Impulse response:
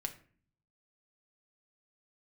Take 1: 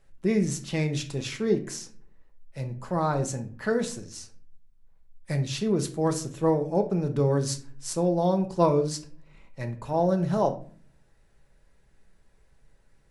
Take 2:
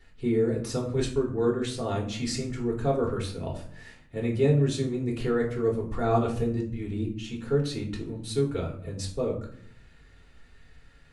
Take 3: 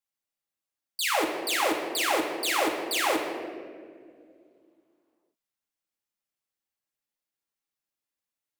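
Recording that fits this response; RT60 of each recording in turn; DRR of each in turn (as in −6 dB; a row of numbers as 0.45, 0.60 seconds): 1; 0.45, 0.65, 2.1 seconds; 4.5, −2.0, −2.0 decibels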